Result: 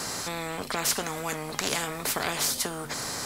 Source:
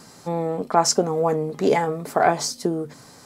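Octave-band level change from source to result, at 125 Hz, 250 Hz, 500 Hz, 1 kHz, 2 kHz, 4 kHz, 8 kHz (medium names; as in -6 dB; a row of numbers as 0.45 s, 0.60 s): -9.5 dB, -11.0 dB, -13.5 dB, -11.0 dB, -0.5 dB, +0.5 dB, -0.5 dB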